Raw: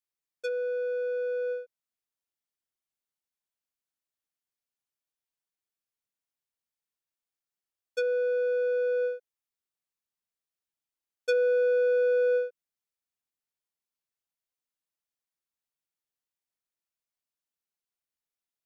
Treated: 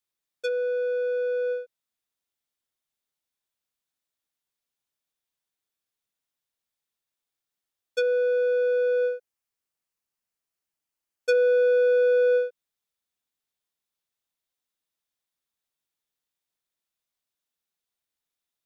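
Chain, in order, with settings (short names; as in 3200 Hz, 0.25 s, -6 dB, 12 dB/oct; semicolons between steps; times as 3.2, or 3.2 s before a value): bell 3600 Hz +4.5 dB 0.24 oct, from 9.09 s -3.5 dB, from 11.35 s +5.5 dB; gain +4 dB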